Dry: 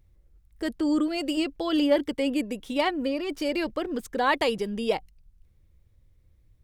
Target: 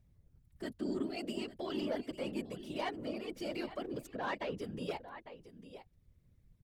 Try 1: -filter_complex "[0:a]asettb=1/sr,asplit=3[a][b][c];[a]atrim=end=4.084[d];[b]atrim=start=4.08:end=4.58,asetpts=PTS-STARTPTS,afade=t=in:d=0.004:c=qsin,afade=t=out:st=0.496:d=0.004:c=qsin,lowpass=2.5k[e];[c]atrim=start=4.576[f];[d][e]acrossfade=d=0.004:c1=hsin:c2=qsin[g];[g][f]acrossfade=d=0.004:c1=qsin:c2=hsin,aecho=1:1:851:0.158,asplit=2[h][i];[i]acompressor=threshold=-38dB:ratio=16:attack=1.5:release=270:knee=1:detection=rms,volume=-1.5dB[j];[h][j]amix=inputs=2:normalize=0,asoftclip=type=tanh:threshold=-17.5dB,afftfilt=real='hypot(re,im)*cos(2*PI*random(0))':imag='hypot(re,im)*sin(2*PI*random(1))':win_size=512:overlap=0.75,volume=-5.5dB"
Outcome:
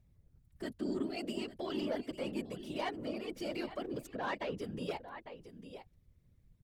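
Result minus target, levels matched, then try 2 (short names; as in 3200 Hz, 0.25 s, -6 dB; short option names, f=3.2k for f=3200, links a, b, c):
compressor: peak gain reduction -9.5 dB
-filter_complex "[0:a]asettb=1/sr,asplit=3[a][b][c];[a]atrim=end=4.084[d];[b]atrim=start=4.08:end=4.58,asetpts=PTS-STARTPTS,afade=t=in:d=0.004:c=qsin,afade=t=out:st=0.496:d=0.004:c=qsin,lowpass=2.5k[e];[c]atrim=start=4.576[f];[d][e]acrossfade=d=0.004:c1=hsin:c2=qsin[g];[g][f]acrossfade=d=0.004:c1=qsin:c2=hsin,aecho=1:1:851:0.158,asplit=2[h][i];[i]acompressor=threshold=-48dB:ratio=16:attack=1.5:release=270:knee=1:detection=rms,volume=-1.5dB[j];[h][j]amix=inputs=2:normalize=0,asoftclip=type=tanh:threshold=-17.5dB,afftfilt=real='hypot(re,im)*cos(2*PI*random(0))':imag='hypot(re,im)*sin(2*PI*random(1))':win_size=512:overlap=0.75,volume=-5.5dB"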